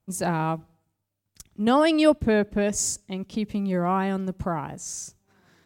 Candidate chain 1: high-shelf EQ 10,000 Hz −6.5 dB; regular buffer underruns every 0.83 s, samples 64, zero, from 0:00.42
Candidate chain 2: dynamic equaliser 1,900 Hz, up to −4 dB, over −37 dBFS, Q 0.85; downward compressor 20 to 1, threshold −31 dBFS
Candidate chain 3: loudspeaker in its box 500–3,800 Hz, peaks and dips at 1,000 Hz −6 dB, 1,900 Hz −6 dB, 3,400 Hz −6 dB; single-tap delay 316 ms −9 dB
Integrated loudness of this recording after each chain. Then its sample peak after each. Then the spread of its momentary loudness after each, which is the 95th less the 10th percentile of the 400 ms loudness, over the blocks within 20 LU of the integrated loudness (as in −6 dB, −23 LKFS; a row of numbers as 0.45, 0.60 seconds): −25.0, −36.0, −29.0 LKFS; −6.5, −21.5, −9.5 dBFS; 15, 4, 18 LU